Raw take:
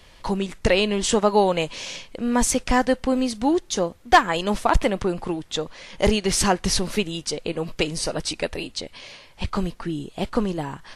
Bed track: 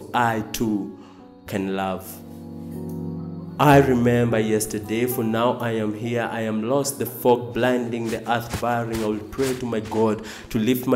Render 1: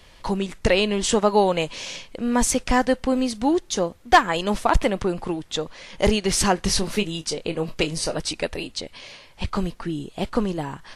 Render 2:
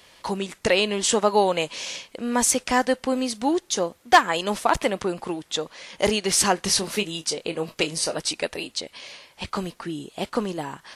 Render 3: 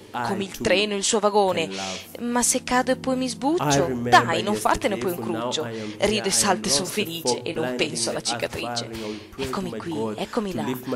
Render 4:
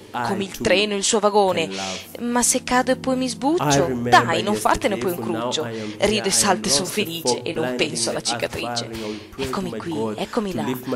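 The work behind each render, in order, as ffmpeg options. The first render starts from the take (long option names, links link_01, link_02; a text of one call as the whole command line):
ffmpeg -i in.wav -filter_complex "[0:a]asettb=1/sr,asplit=3[link_01][link_02][link_03];[link_01]atrim=end=6.554[link_04];[link_02]atrim=start=6.55:end=8.16,asetpts=PTS-STARTPTS,afade=type=in:duration=0.004:curve=qsin,afade=type=out:start_time=1.606:duration=0.004:curve=qsin,asplit=2[link_05][link_06];[link_06]adelay=25,volume=-10.5dB[link_07];[link_05][link_07]amix=inputs=2:normalize=0,atrim=end_sample=71001[link_08];[link_03]atrim=start=8.156[link_09];[link_04][link_08]acrossfade=duration=0.004:curve1=hsin:curve2=qsin[link_10];[link_10][link_09]acrossfade=duration=0.004:curve1=qsin:curve2=hsin" out.wav
ffmpeg -i in.wav -af "highpass=frequency=290:poles=1,highshelf=frequency=6800:gain=5" out.wav
ffmpeg -i in.wav -i bed.wav -filter_complex "[1:a]volume=-8dB[link_01];[0:a][link_01]amix=inputs=2:normalize=0" out.wav
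ffmpeg -i in.wav -af "volume=2.5dB,alimiter=limit=-1dB:level=0:latency=1" out.wav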